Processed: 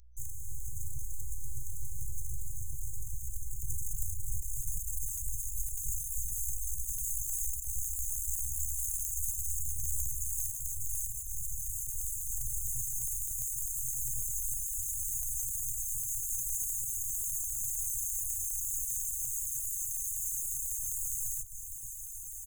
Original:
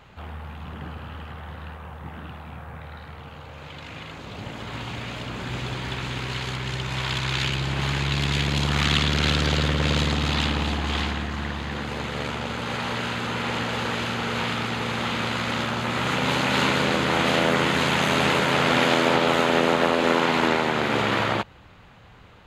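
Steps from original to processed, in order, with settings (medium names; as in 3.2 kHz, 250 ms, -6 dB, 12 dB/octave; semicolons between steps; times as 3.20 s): in parallel at -2.5 dB: compression, threshold -30 dBFS, peak gain reduction 14 dB; on the sum: hum notches 50/100/150/200/250/300 Hz; comb 2.1 ms, depth 36%; Schmitt trigger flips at -32.5 dBFS; filtered feedback delay 298 ms, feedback 58%, level -5 dB; hum 60 Hz, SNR 17 dB; high-pass 94 Hz 24 dB/octave; on a send: echo that smears into a reverb 1582 ms, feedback 58%, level -9 dB; on the sum: robot voice 244 Hz; FFT band-reject 130–6100 Hz; reverb removal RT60 0.68 s; trim +2.5 dB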